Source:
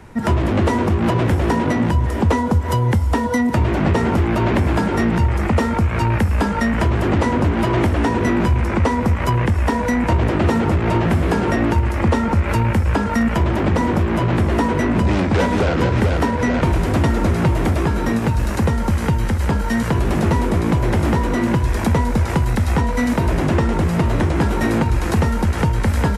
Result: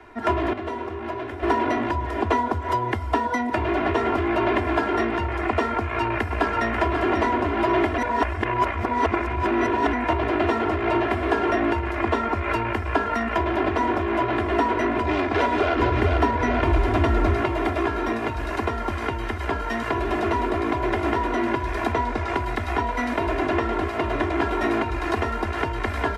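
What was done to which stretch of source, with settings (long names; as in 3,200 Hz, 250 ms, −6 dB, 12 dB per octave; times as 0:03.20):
0:00.53–0:01.43: tuned comb filter 79 Hz, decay 1.6 s, mix 70%
0:05.76–0:06.72: delay throw 540 ms, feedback 35%, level −7 dB
0:07.98–0:09.93: reverse
0:15.76–0:17.42: low-shelf EQ 130 Hz +12 dB
0:21.92–0:22.35: low-pass filter 8,800 Hz
whole clip: three-way crossover with the lows and the highs turned down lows −13 dB, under 340 Hz, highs −16 dB, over 3,900 Hz; comb filter 2.9 ms, depth 98%; level −3 dB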